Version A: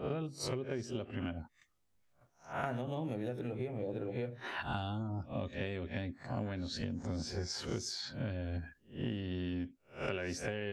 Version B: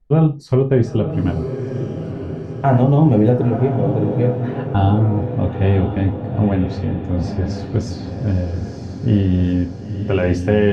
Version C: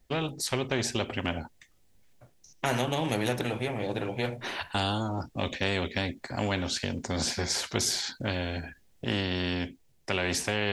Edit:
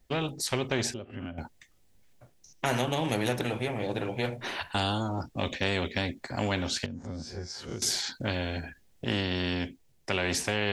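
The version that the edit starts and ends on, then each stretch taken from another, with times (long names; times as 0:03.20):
C
0:00.94–0:01.38: punch in from A
0:06.86–0:07.82: punch in from A
not used: B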